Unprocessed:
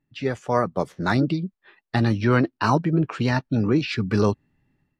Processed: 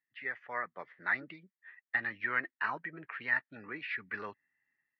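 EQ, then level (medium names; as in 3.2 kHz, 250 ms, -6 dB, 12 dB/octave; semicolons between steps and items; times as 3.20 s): band-pass filter 1.9 kHz, Q 7; distance through air 280 m; +6.0 dB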